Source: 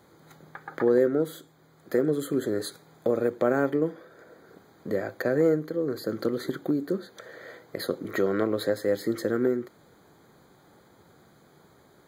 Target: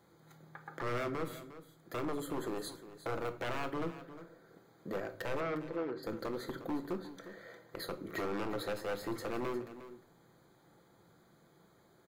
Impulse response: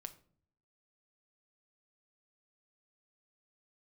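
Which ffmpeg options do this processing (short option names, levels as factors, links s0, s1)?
-filter_complex "[0:a]aeval=exprs='0.075*(abs(mod(val(0)/0.075+3,4)-2)-1)':c=same,asettb=1/sr,asplit=3[s0][s1][s2];[s0]atrim=end=5.404[s3];[s1]atrim=start=5.4:end=6.03,asetpts=PTS-STARTPTS,afade=t=in:d=0.004:c=qsin,afade=t=out:st=0.626:d=0.004:c=qsin,highpass=180,lowpass=3300[s4];[s2]atrim=start=6.026[s5];[s3][s4]acrossfade=d=0.004:c1=hsin:c2=qsin[s6];[s6][s5]acrossfade=d=0.004:c1=qsin:c2=hsin,aecho=1:1:356:0.2[s7];[1:a]atrim=start_sample=2205[s8];[s7][s8]afir=irnorm=-1:irlink=0,volume=0.668"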